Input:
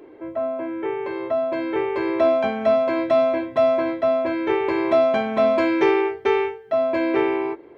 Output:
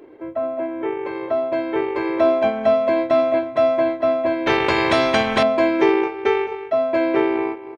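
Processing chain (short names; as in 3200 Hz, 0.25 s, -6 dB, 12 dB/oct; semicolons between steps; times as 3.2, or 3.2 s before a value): outdoor echo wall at 37 m, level -9 dB; transient shaper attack +1 dB, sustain -7 dB; 4.46–5.43 spectral compressor 2:1; gain +1 dB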